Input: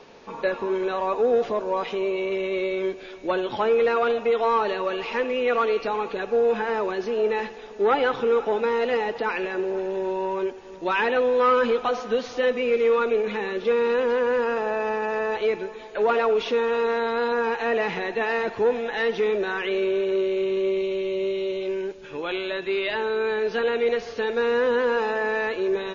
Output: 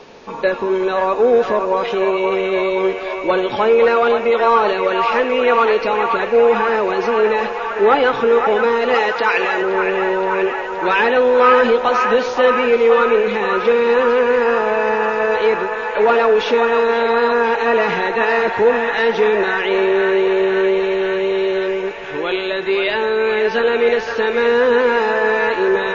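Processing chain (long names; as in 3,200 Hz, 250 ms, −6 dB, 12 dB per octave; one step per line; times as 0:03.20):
0:08.94–0:09.62: tilt shelving filter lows −6 dB, about 700 Hz
delay with a band-pass on its return 522 ms, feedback 76%, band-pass 1,300 Hz, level −4.5 dB
level +7.5 dB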